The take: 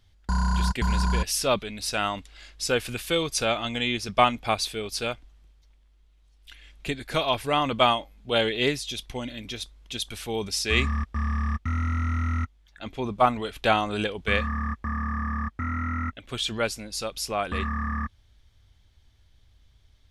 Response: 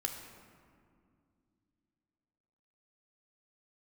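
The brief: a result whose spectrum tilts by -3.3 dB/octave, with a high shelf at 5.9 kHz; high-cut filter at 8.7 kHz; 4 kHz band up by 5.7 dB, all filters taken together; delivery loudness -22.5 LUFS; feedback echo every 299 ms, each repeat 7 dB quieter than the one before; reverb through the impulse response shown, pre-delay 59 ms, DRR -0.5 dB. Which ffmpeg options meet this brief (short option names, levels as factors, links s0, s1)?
-filter_complex "[0:a]lowpass=8700,equalizer=f=4000:t=o:g=5.5,highshelf=f=5900:g=6,aecho=1:1:299|598|897|1196|1495:0.447|0.201|0.0905|0.0407|0.0183,asplit=2[s0][s1];[1:a]atrim=start_sample=2205,adelay=59[s2];[s1][s2]afir=irnorm=-1:irlink=0,volume=0.891[s3];[s0][s3]amix=inputs=2:normalize=0,volume=0.841"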